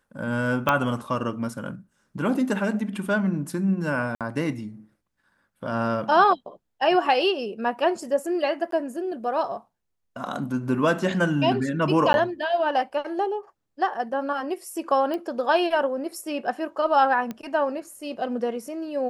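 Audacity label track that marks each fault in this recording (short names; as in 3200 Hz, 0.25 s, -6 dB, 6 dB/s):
0.690000	0.690000	pop -8 dBFS
4.150000	4.210000	gap 57 ms
8.710000	8.720000	gap 13 ms
12.130000	12.140000	gap 11 ms
15.140000	15.140000	pop -19 dBFS
17.310000	17.310000	pop -19 dBFS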